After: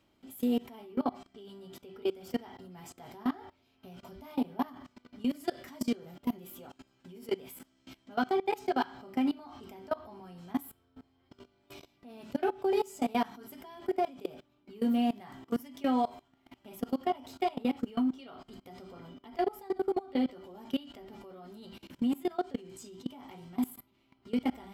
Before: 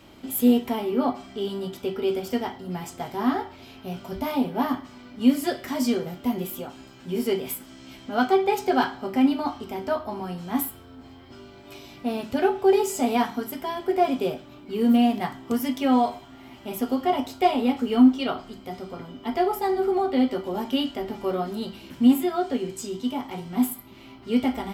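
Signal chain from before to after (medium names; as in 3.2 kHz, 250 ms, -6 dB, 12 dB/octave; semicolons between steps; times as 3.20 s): level held to a coarse grid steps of 22 dB; trim -4.5 dB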